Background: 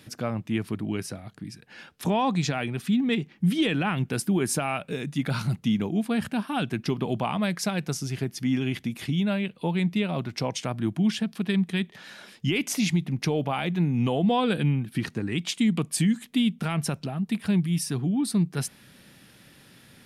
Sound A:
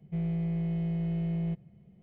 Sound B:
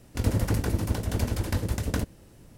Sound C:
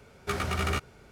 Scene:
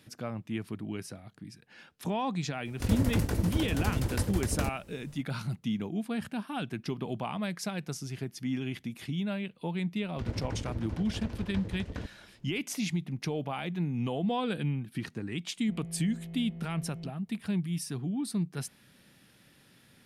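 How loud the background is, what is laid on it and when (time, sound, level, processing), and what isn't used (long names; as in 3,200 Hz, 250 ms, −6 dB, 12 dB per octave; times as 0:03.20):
background −7.5 dB
0:02.65: mix in B −3 dB
0:10.02: mix in B −10.5 dB + low-pass filter 3,900 Hz
0:15.56: mix in A −11.5 dB
not used: C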